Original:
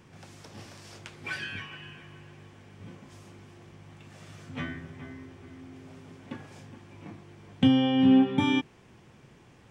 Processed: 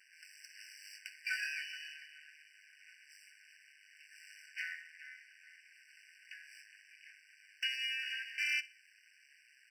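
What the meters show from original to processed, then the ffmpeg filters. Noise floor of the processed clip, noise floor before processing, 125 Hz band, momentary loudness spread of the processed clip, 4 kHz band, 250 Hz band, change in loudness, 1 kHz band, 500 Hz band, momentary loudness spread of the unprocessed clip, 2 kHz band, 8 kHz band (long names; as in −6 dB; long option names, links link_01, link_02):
−66 dBFS, −56 dBFS, below −40 dB, 23 LU, −3.5 dB, below −40 dB, −14.0 dB, below −35 dB, below −40 dB, 23 LU, 0.0 dB, can't be measured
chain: -af "aecho=1:1:62|124|186:0.126|0.0403|0.0129,aeval=exprs='max(val(0),0)':channel_layout=same,afftfilt=real='re*eq(mod(floor(b*sr/1024/1500),2),1)':imag='im*eq(mod(floor(b*sr/1024/1500),2),1)':win_size=1024:overlap=0.75,volume=4.5dB"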